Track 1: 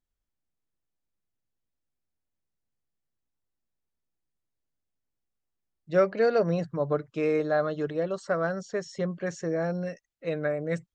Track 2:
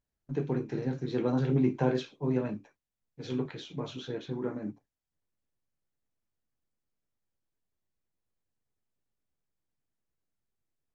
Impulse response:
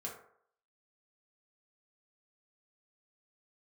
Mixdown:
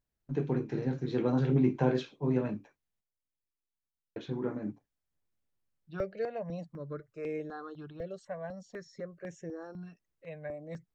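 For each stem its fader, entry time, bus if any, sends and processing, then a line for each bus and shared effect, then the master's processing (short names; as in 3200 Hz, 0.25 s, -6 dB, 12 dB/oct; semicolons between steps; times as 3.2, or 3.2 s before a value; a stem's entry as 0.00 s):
-9.5 dB, 0.00 s, no send, step phaser 4 Hz 270–4400 Hz
-0.5 dB, 0.00 s, muted 3.01–4.16, no send, dry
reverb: off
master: tone controls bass +1 dB, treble -3 dB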